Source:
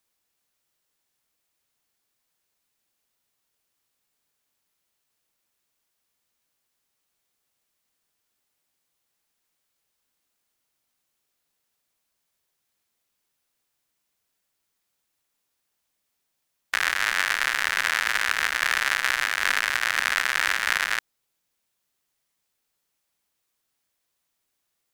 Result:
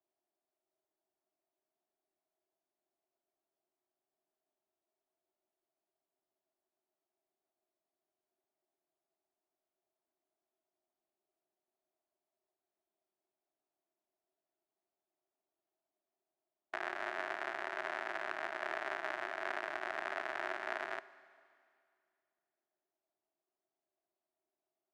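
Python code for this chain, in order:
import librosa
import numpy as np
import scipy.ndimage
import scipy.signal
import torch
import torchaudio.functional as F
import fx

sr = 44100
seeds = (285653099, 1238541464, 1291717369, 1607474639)

y = fx.double_bandpass(x, sr, hz=490.0, octaves=0.78)
y = fx.rev_schroeder(y, sr, rt60_s=2.3, comb_ms=32, drr_db=16.5)
y = y * 10.0 ** (4.0 / 20.0)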